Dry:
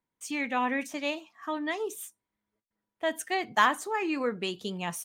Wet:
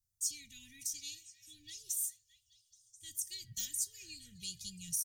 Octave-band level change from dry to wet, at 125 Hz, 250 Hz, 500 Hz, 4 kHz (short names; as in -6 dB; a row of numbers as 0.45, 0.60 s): n/a, -25.0 dB, under -40 dB, -7.0 dB